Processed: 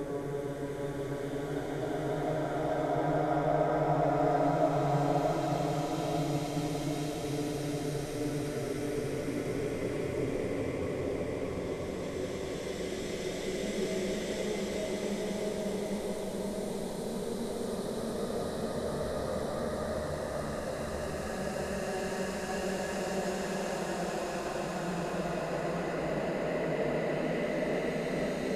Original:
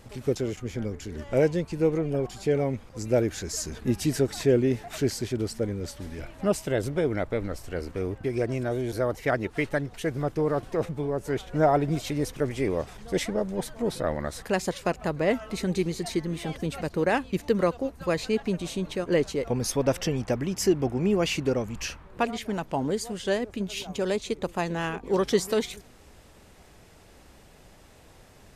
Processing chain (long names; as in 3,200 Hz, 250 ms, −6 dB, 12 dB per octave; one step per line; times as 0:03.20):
extreme stretch with random phases 6.5×, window 1.00 s, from 0:11.07
feedback echo with a long and a short gap by turns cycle 825 ms, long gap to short 3 to 1, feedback 66%, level −13 dB
level −6 dB